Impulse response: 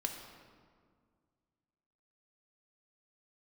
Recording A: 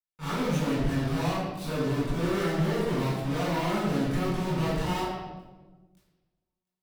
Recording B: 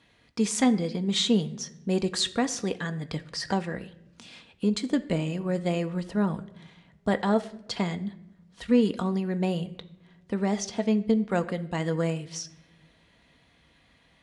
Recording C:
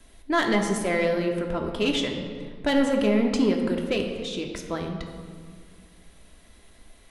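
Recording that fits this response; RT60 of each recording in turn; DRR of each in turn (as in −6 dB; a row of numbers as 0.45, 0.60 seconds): C; 1.3 s, non-exponential decay, 1.9 s; −13.5, 8.0, 2.0 decibels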